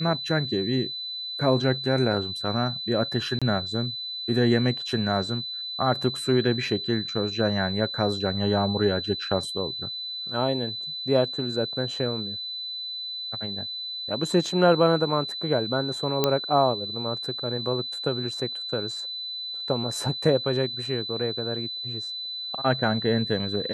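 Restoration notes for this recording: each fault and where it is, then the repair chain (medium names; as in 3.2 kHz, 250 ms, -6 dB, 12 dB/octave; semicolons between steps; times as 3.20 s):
whine 4 kHz -31 dBFS
3.39–3.42 s: dropout 26 ms
16.24 s: pop -6 dBFS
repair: de-click; band-stop 4 kHz, Q 30; interpolate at 3.39 s, 26 ms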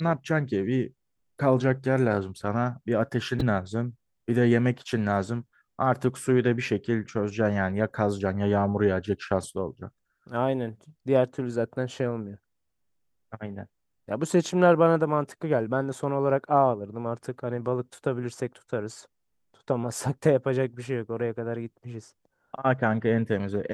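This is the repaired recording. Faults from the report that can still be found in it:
nothing left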